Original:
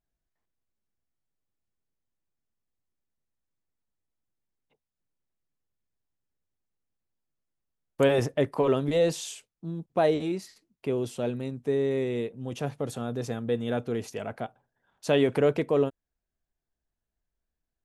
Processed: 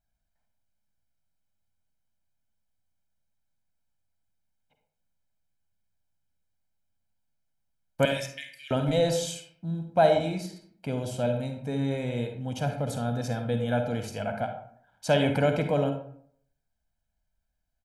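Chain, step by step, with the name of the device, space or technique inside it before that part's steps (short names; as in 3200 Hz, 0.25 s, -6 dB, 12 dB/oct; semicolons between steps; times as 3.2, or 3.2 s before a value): 8.05–8.71 steep high-pass 1800 Hz 72 dB/oct; microphone above a desk (comb 1.3 ms, depth 78%; reverb RT60 0.60 s, pre-delay 44 ms, DRR 5 dB)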